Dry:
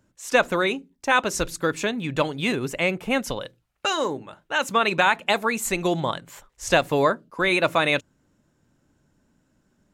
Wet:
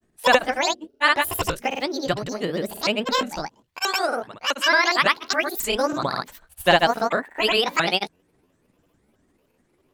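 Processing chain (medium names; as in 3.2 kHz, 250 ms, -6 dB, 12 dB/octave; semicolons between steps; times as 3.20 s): sawtooth pitch modulation +12 st, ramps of 354 ms; granulator 100 ms, grains 20 per s, pitch spread up and down by 0 st; trim +3 dB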